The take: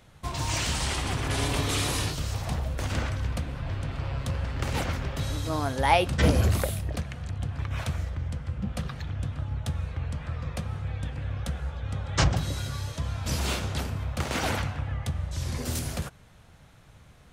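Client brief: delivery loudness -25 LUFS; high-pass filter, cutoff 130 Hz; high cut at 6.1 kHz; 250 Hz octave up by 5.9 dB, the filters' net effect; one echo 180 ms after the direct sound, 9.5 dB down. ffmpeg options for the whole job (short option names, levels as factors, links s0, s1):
-af "highpass=130,lowpass=6100,equalizer=f=250:t=o:g=8.5,aecho=1:1:180:0.335,volume=1.78"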